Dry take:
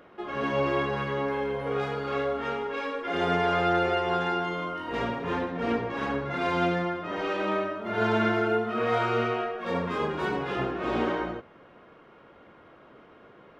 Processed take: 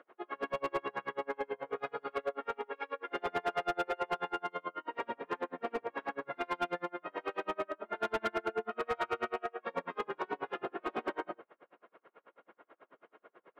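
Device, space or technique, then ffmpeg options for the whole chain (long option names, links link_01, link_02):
helicopter radio: -af "highpass=400,lowpass=2500,aeval=exprs='val(0)*pow(10,-36*(0.5-0.5*cos(2*PI*9.2*n/s))/20)':channel_layout=same,asoftclip=type=hard:threshold=-26.5dB"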